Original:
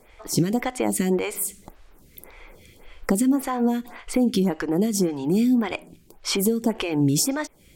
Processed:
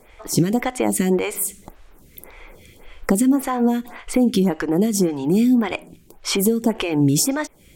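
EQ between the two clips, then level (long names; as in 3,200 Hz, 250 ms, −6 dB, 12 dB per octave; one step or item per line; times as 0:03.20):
parametric band 4,700 Hz −3 dB 0.43 octaves
+3.5 dB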